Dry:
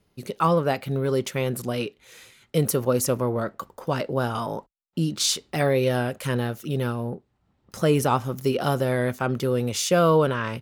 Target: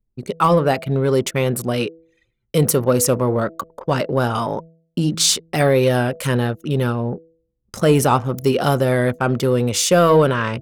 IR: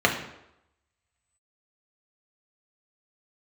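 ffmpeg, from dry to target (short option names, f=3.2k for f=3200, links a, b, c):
-filter_complex "[0:a]anlmdn=1,equalizer=f=8.2k:w=3.6:g=4,bandreject=f=163.8:t=h:w=4,bandreject=f=327.6:t=h:w=4,bandreject=f=491.4:t=h:w=4,bandreject=f=655.2:t=h:w=4,asplit=2[a][b];[b]asoftclip=type=tanh:threshold=-17.5dB,volume=-4.5dB[c];[a][c]amix=inputs=2:normalize=0,volume=3dB"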